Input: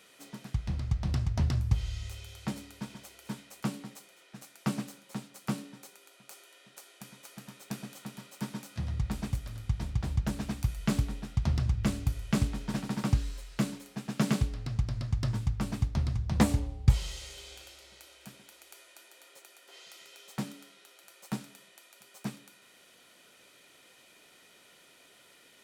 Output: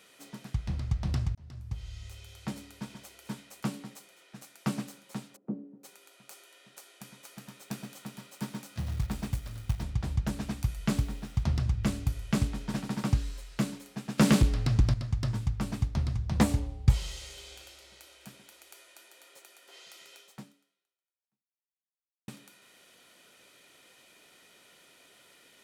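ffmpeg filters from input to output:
ffmpeg -i in.wav -filter_complex "[0:a]asplit=3[link_01][link_02][link_03];[link_01]afade=type=out:start_time=5.35:duration=0.02[link_04];[link_02]asuperpass=centerf=310:order=4:qfactor=1,afade=type=in:start_time=5.35:duration=0.02,afade=type=out:start_time=5.83:duration=0.02[link_05];[link_03]afade=type=in:start_time=5.83:duration=0.02[link_06];[link_04][link_05][link_06]amix=inputs=3:normalize=0,asettb=1/sr,asplit=3[link_07][link_08][link_09];[link_07]atrim=end=7.254[link_10];[link_08]atrim=start=7.25:end=9.83,asetpts=PTS-STARTPTS,afade=type=in:duration=0.004:curve=qsin,afade=type=out:start_time=2.576:duration=0.004:curve=qsin,acrusher=bits=5:mode=log:mix=0:aa=0.000001[link_11];[link_09]atrim=start=9.826[link_12];[link_10][link_11]acrossfade=duration=0.004:curve1=hsin:curve2=qsin[link_13];[link_13][link_12]acrossfade=duration=0.004:curve1=qsin:curve2=hsin,asettb=1/sr,asplit=3[link_14][link_15][link_16];[link_14]atrim=end=10.974[link_17];[link_15]atrim=start=10.97:end=11.44,asetpts=PTS-STARTPTS,afade=type=in:duration=0.004:curve=qsin,afade=type=out:start_time=0.466:duration=0.004:curve=qsin,acrusher=bits=8:mix=0:aa=0.5[link_18];[link_16]atrim=start=11.436[link_19];[link_17][link_18]acrossfade=duration=0.004:curve1=hsin:curve2=qsin[link_20];[link_20][link_19]acrossfade=duration=0.004:curve1=qsin:curve2=hsin,asettb=1/sr,asplit=3[link_21][link_22][link_23];[link_21]atrim=end=14.184[link_24];[link_22]atrim=start=14.18:end=14.94,asetpts=PTS-STARTPTS,afade=type=in:duration=0.004:curve=qsin,afade=type=out:start_time=0.756:duration=0.004:curve=qsin,aeval=exprs='0.188*sin(PI/2*1.78*val(0)/0.188)':channel_layout=same[link_25];[link_23]atrim=start=14.936[link_26];[link_24][link_25]acrossfade=duration=0.004:curve1=hsin:curve2=qsin[link_27];[link_27][link_26]acrossfade=duration=0.004:curve1=qsin:curve2=hsin,asplit=3[link_28][link_29][link_30];[link_28]atrim=end=1.35,asetpts=PTS-STARTPTS,afade=type=out:start_time=1.346:duration=0.004:curve=hsin[link_31];[link_29]atrim=start=1.35:end=22.28,asetpts=PTS-STARTPTS,afade=type=in:duration=1.83:curve=qsin,afade=type=out:start_time=18.81:duration=2.12:curve=exp[link_32];[link_30]atrim=start=22.28,asetpts=PTS-STARTPTS,afade=type=in:duration=0.004:curve=hsin[link_33];[link_31][link_32][link_33]concat=n=3:v=0:a=1" out.wav

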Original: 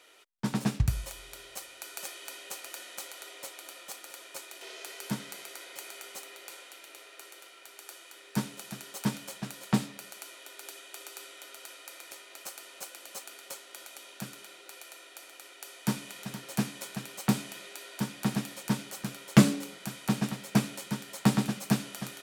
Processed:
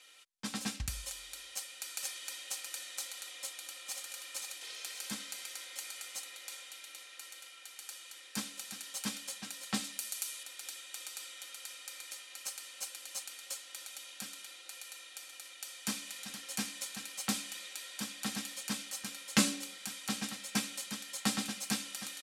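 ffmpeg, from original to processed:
ffmpeg -i in.wav -filter_complex "[0:a]asplit=2[link_01][link_02];[link_02]afade=type=in:start_time=3.32:duration=0.01,afade=type=out:start_time=4.02:duration=0.01,aecho=0:1:530|1060|1590|2120|2650:0.595662|0.238265|0.0953059|0.0381224|0.015249[link_03];[link_01][link_03]amix=inputs=2:normalize=0,asettb=1/sr,asplit=3[link_04][link_05][link_06];[link_04]atrim=end=9.844[link_07];[link_05]atrim=start=9.84:end=10.43,asetpts=PTS-STARTPTS,afade=type=in:duration=0.004:curve=qsin,afade=type=out:start_time=0.586:duration=0.004:curve=qsin,aemphasis=mode=production:type=cd[link_08];[link_06]atrim=start=10.426[link_09];[link_07][link_08]acrossfade=duration=0.004:curve1=hsin:curve2=qsin[link_10];[link_10][link_09]acrossfade=duration=0.004:curve1=qsin:curve2=hsin,lowpass=11000,tiltshelf=frequency=1500:gain=-8,aecho=1:1:3.8:0.66,volume=-5.5dB" out.wav

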